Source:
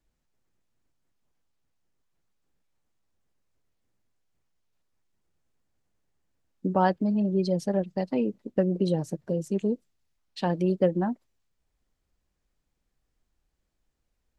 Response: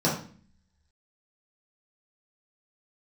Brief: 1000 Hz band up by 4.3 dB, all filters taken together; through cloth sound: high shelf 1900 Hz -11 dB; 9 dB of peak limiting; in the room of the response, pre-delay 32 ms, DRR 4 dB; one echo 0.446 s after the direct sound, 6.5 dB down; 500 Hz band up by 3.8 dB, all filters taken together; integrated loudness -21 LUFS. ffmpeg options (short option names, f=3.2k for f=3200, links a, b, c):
-filter_complex "[0:a]equalizer=f=500:t=o:g=4,equalizer=f=1k:t=o:g=6.5,alimiter=limit=-13.5dB:level=0:latency=1,aecho=1:1:446:0.473,asplit=2[a][b];[1:a]atrim=start_sample=2205,adelay=32[c];[b][c]afir=irnorm=-1:irlink=0,volume=-17.5dB[d];[a][d]amix=inputs=2:normalize=0,highshelf=f=1.9k:g=-11,volume=1dB"